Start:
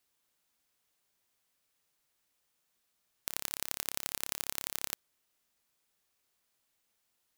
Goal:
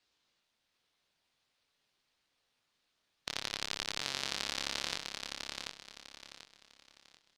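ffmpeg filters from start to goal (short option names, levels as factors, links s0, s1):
-af "flanger=delay=19:depth=6.6:speed=0.53,lowpass=f=4400:t=q:w=1.6,aecho=1:1:738|1476|2214|2952:0.596|0.185|0.0572|0.0177,volume=1.88" -ar 48000 -c:a libopus -b:a 48k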